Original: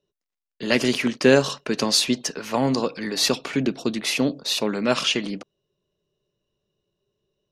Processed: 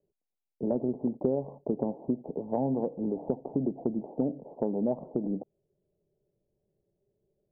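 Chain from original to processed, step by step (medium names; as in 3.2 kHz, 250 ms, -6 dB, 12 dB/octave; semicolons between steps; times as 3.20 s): steep low-pass 860 Hz 72 dB/octave; compression 6:1, threshold -25 dBFS, peak gain reduction 14 dB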